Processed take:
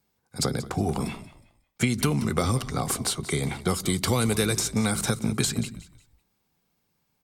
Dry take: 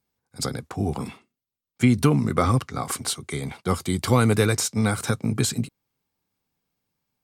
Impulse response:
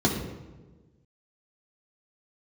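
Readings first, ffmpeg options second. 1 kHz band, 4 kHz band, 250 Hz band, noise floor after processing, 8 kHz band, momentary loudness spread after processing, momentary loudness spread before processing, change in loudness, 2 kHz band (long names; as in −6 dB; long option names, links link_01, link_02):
−4.0 dB, +1.5 dB, −3.0 dB, −74 dBFS, +1.0 dB, 8 LU, 11 LU, −2.5 dB, −1.5 dB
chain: -filter_complex "[0:a]asplit=2[link_01][link_02];[1:a]atrim=start_sample=2205,atrim=end_sample=6174[link_03];[link_02][link_03]afir=irnorm=-1:irlink=0,volume=-35dB[link_04];[link_01][link_04]amix=inputs=2:normalize=0,acrossover=split=660|3000[link_05][link_06][link_07];[link_05]acompressor=threshold=-29dB:ratio=4[link_08];[link_06]acompressor=threshold=-40dB:ratio=4[link_09];[link_07]acompressor=threshold=-32dB:ratio=4[link_10];[link_08][link_09][link_10]amix=inputs=3:normalize=0,asplit=4[link_11][link_12][link_13][link_14];[link_12]adelay=182,afreqshift=-57,volume=-16dB[link_15];[link_13]adelay=364,afreqshift=-114,volume=-26.5dB[link_16];[link_14]adelay=546,afreqshift=-171,volume=-36.9dB[link_17];[link_11][link_15][link_16][link_17]amix=inputs=4:normalize=0,volume=5.5dB"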